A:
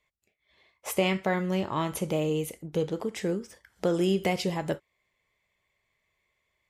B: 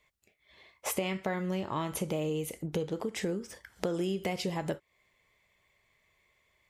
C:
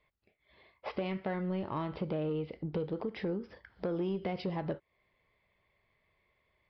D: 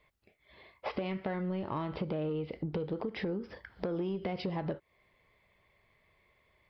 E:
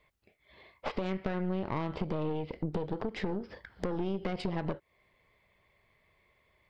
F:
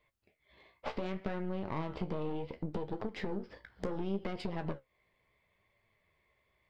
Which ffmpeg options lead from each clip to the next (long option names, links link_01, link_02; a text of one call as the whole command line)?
ffmpeg -i in.wav -af "acompressor=threshold=-37dB:ratio=4,volume=5.5dB" out.wav
ffmpeg -i in.wav -af "highshelf=frequency=2100:gain=-10.5,aresample=11025,asoftclip=type=tanh:threshold=-25.5dB,aresample=44100" out.wav
ffmpeg -i in.wav -af "acompressor=threshold=-38dB:ratio=4,volume=5.5dB" out.wav
ffmpeg -i in.wav -af "aeval=exprs='0.112*(cos(1*acos(clip(val(0)/0.112,-1,1)))-cos(1*PI/2))+0.0316*(cos(4*acos(clip(val(0)/0.112,-1,1)))-cos(4*PI/2))':channel_layout=same" out.wav
ffmpeg -i in.wav -filter_complex "[0:a]flanger=delay=8.6:depth=8.7:regen=54:speed=0.69:shape=sinusoidal,asplit=2[link_01][link_02];[link_02]aeval=exprs='sgn(val(0))*max(abs(val(0))-0.00133,0)':channel_layout=same,volume=-11dB[link_03];[link_01][link_03]amix=inputs=2:normalize=0,volume=-1.5dB" out.wav